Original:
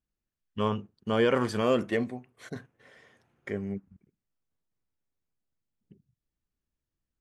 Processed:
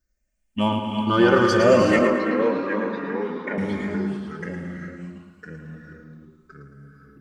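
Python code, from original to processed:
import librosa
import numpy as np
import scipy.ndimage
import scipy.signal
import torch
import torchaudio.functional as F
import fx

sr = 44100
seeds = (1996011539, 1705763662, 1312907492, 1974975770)

p1 = fx.spec_ripple(x, sr, per_octave=0.56, drift_hz=0.65, depth_db=14)
p2 = p1 + 0.76 * np.pad(p1, (int(3.3 * sr / 1000.0), 0))[:len(p1)]
p3 = 10.0 ** (-23.0 / 20.0) * np.tanh(p2 / 10.0 ** (-23.0 / 20.0))
p4 = p2 + (p3 * librosa.db_to_amplitude(-11.0))
p5 = fx.rev_gated(p4, sr, seeds[0], gate_ms=400, shape='rising', drr_db=4.0)
p6 = fx.echo_pitch(p5, sr, ms=528, semitones=-2, count=3, db_per_echo=-6.0)
p7 = fx.bandpass_edges(p6, sr, low_hz=270.0, high_hz=2300.0, at=(1.99, 3.58))
p8 = p7 + fx.echo_feedback(p7, sr, ms=111, feedback_pct=45, wet_db=-7.5, dry=0)
y = p8 * librosa.db_to_amplitude(2.0)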